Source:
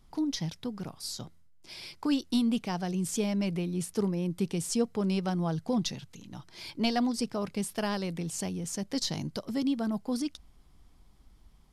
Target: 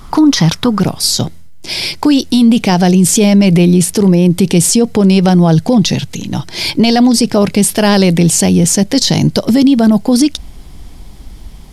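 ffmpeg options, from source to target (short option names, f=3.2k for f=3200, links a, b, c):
-af "asetnsamples=n=441:p=0,asendcmd='0.8 equalizer g -6.5',equalizer=f=1.2k:t=o:w=0.67:g=9.5,alimiter=level_in=27.5dB:limit=-1dB:release=50:level=0:latency=1,volume=-1dB"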